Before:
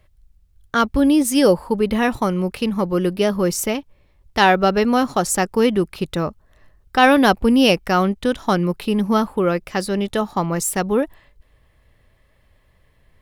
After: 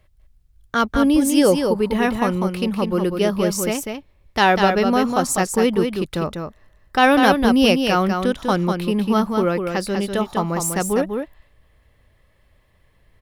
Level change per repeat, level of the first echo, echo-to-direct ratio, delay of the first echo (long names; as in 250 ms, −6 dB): repeats not evenly spaced, −5.5 dB, −5.5 dB, 197 ms